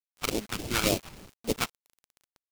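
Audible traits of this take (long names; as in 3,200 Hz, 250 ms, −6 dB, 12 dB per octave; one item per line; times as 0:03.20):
aliases and images of a low sample rate 1,800 Hz, jitter 20%
phaser sweep stages 2, 3.5 Hz, lowest notch 420–1,300 Hz
a quantiser's noise floor 8 bits, dither none
tremolo saw up 0.92 Hz, depth 55%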